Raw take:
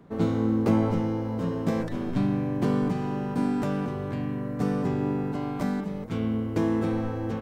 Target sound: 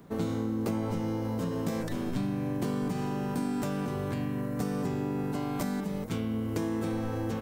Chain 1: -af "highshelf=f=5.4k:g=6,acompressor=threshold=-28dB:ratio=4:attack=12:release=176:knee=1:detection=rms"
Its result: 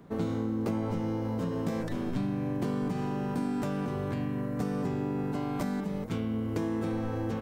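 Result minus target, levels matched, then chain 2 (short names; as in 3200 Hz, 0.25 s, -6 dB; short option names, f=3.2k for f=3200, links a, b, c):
8000 Hz band -6.0 dB
-af "highshelf=f=5.4k:g=15.5,acompressor=threshold=-28dB:ratio=4:attack=12:release=176:knee=1:detection=rms"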